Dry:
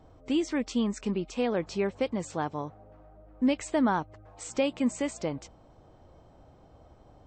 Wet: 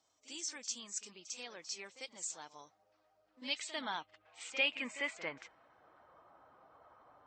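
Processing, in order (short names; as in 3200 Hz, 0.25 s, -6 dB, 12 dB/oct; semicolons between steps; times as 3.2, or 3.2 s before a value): bin magnitudes rounded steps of 15 dB; pre-echo 48 ms -13 dB; band-pass sweep 6600 Hz -> 1300 Hz, 2.37–6.22; gain +7 dB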